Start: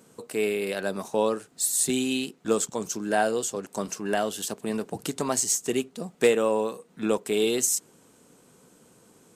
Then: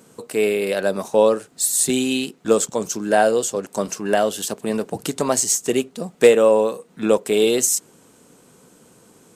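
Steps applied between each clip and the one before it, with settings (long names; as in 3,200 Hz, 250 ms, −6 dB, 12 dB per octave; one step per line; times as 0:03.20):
dynamic equaliser 550 Hz, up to +6 dB, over −39 dBFS, Q 3
level +5.5 dB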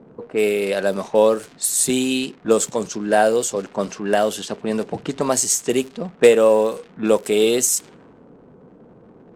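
mu-law and A-law mismatch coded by mu
surface crackle 160 per second −29 dBFS
low-pass that shuts in the quiet parts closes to 660 Hz, open at −16 dBFS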